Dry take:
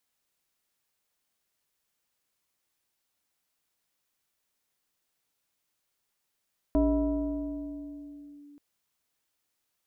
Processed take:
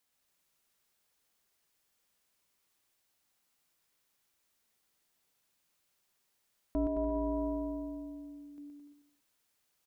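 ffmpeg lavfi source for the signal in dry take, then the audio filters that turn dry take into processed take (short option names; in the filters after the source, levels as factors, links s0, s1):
-f lavfi -i "aevalsrc='0.106*pow(10,-3*t/3.63)*sin(2*PI*289*t+1*clip(1-t/1.71,0,1)*sin(2*PI*1.19*289*t))':d=1.83:s=44100"
-filter_complex "[0:a]asplit=2[s0][s1];[s1]aecho=0:1:120|216|292.8|354.2|403.4:0.631|0.398|0.251|0.158|0.1[s2];[s0][s2]amix=inputs=2:normalize=0,alimiter=level_in=1.41:limit=0.0631:level=0:latency=1:release=200,volume=0.708,asplit=2[s3][s4];[s4]aecho=0:1:221:0.299[s5];[s3][s5]amix=inputs=2:normalize=0"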